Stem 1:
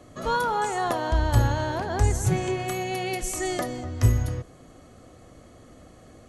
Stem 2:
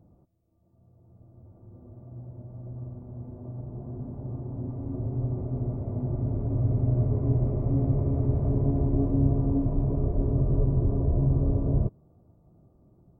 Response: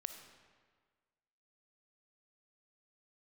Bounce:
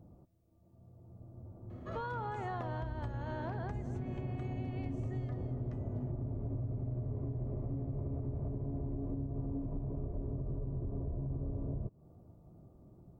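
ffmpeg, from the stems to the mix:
-filter_complex "[0:a]lowpass=2.5k,bandreject=f=50:t=h:w=6,bandreject=f=100:t=h:w=6,acompressor=threshold=-25dB:ratio=6,adelay=1700,volume=-7.5dB,afade=t=out:st=3.52:d=0.69:silence=0.446684[a];[1:a]alimiter=limit=-21dB:level=0:latency=1:release=185,volume=1dB[b];[a][b]amix=inputs=2:normalize=0,acompressor=threshold=-35dB:ratio=6"

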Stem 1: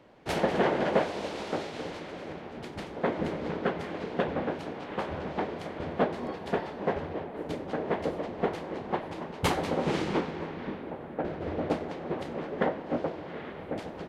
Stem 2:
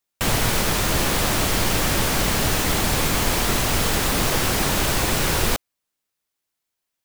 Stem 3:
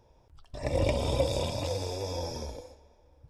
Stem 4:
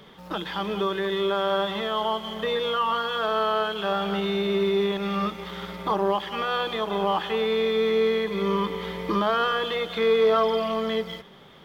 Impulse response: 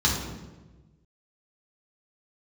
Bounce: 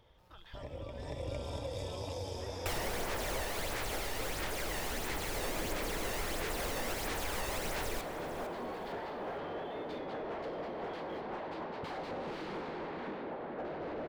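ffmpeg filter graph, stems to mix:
-filter_complex "[0:a]equalizer=f=4.5k:t=o:w=0.84:g=12,asplit=2[a][b];[b]highpass=f=720:p=1,volume=33dB,asoftclip=type=tanh:threshold=-10.5dB[c];[a][c]amix=inputs=2:normalize=0,lowpass=f=1.4k:p=1,volume=-6dB,adelay=2400,volume=-9.5dB[d];[1:a]equalizer=f=2k:t=o:w=0.77:g=5,aphaser=in_gain=1:out_gain=1:delay=1.1:decay=0.52:speed=1.5:type=sinusoidal,adelay=2450,volume=-13.5dB,asplit=2[e][f];[f]volume=-20dB[g];[2:a]alimiter=limit=-22.5dB:level=0:latency=1:release=229,volume=-4dB,asplit=2[h][i];[i]volume=-4.5dB[j];[3:a]acompressor=threshold=-30dB:ratio=6,volume=-18.5dB[k];[d][h]amix=inputs=2:normalize=0,highshelf=f=3.8k:g=-12,acompressor=threshold=-44dB:ratio=2.5,volume=0dB[l];[e][k]amix=inputs=2:normalize=0,equalizer=f=230:t=o:w=2.7:g=-13,acompressor=threshold=-36dB:ratio=4,volume=0dB[m];[g][j]amix=inputs=2:normalize=0,aecho=0:1:456|912|1368|1824|2280:1|0.32|0.102|0.0328|0.0105[n];[l][m][n]amix=inputs=3:normalize=0"

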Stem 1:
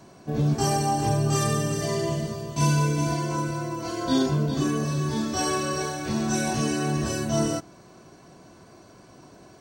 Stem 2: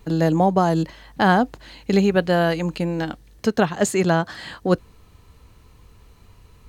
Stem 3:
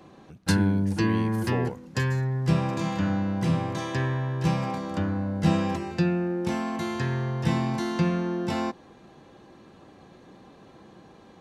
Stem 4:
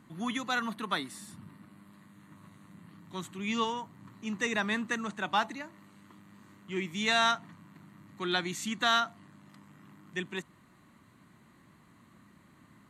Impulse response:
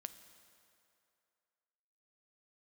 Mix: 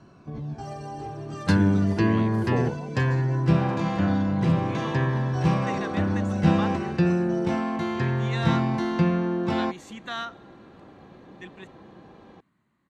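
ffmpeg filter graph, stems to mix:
-filter_complex "[0:a]aemphasis=mode=reproduction:type=50fm,volume=1.5dB[a];[1:a]adelay=2400,volume=-12dB[b];[2:a]highshelf=f=6.3k:g=-9.5,adelay=1000,volume=2.5dB[c];[3:a]dynaudnorm=f=620:g=9:m=10dB,adelay=1250,volume=-17.5dB,asplit=2[d][e];[e]volume=-7dB[f];[a][b]amix=inputs=2:normalize=0,flanger=delay=0.7:depth=4.1:regen=35:speed=0.21:shape=sinusoidal,alimiter=level_in=2.5dB:limit=-24dB:level=0:latency=1:release=493,volume=-2.5dB,volume=0dB[g];[4:a]atrim=start_sample=2205[h];[f][h]afir=irnorm=-1:irlink=0[i];[c][d][g][i]amix=inputs=4:normalize=0,highshelf=f=6.8k:g=-11"

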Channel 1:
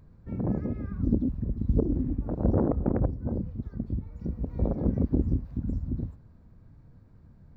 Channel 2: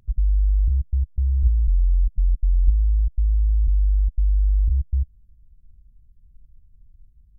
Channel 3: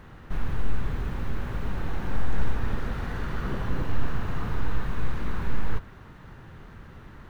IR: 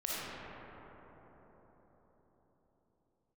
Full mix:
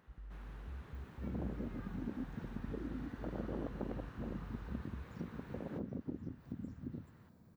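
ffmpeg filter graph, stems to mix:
-filter_complex "[0:a]aemphasis=mode=production:type=50kf,acompressor=threshold=-34dB:ratio=6,adelay=950,volume=-3dB[a];[1:a]volume=-13dB[b];[2:a]volume=-18dB[c];[a][b][c]amix=inputs=3:normalize=0,highpass=140"

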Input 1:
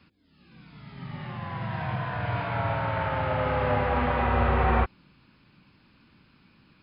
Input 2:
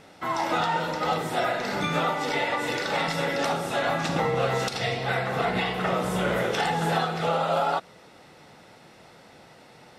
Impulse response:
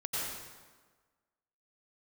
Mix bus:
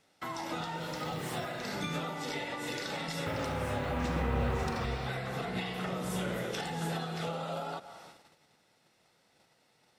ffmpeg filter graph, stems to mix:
-filter_complex "[0:a]lowshelf=f=410:g=-10.5,acrusher=bits=8:mix=0:aa=0.5,volume=-1.5dB,asplit=3[a][b][c];[a]atrim=end=1.46,asetpts=PTS-STARTPTS,afade=t=out:st=1.456:d=0.004:c=hsin[d];[b]atrim=start=1.46:end=3.26,asetpts=PTS-STARTPTS,volume=0[e];[c]atrim=start=3.26,asetpts=PTS-STARTPTS,afade=t=in:d=0.004:c=hsin[f];[d][e][f]concat=n=3:v=0:a=1,asplit=2[g][h];[h]volume=-8.5dB[i];[1:a]volume=-7dB,asplit=2[j][k];[k]volume=-20dB[l];[2:a]atrim=start_sample=2205[m];[i][l]amix=inputs=2:normalize=0[n];[n][m]afir=irnorm=-1:irlink=0[o];[g][j][o]amix=inputs=3:normalize=0,agate=range=-14dB:threshold=-54dB:ratio=16:detection=peak,acrossover=split=390[p][q];[q]acompressor=threshold=-39dB:ratio=6[r];[p][r]amix=inputs=2:normalize=0,highshelf=f=2.9k:g=9.5"

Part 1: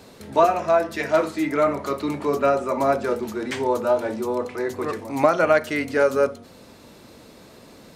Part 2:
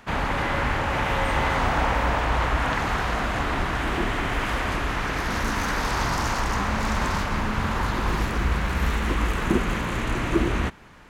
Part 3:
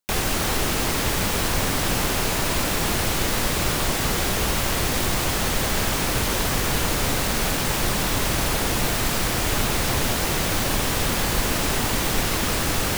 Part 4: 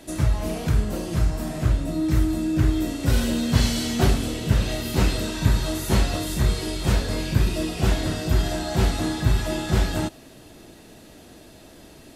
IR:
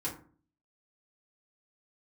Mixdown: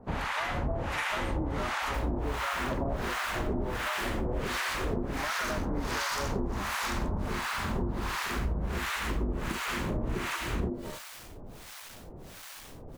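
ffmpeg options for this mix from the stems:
-filter_complex "[0:a]acompressor=threshold=-20dB:ratio=6,volume=-5.5dB[a];[1:a]acrossover=split=260|3000[b][c][d];[c]acompressor=threshold=-26dB:ratio=6[e];[b][e][d]amix=inputs=3:normalize=0,volume=0.5dB[f];[2:a]asoftclip=type=tanh:threshold=-23dB,adelay=1850,volume=-15dB[g];[3:a]aeval=exprs='val(0)*sin(2*PI*300*n/s)':c=same,adelay=900,volume=-7dB[h];[a][f][g][h]amix=inputs=4:normalize=0,acrossover=split=800[i][j];[i]aeval=exprs='val(0)*(1-1/2+1/2*cos(2*PI*1.4*n/s))':c=same[k];[j]aeval=exprs='val(0)*(1-1/2-1/2*cos(2*PI*1.4*n/s))':c=same[l];[k][l]amix=inputs=2:normalize=0,acompressor=threshold=-27dB:ratio=6"

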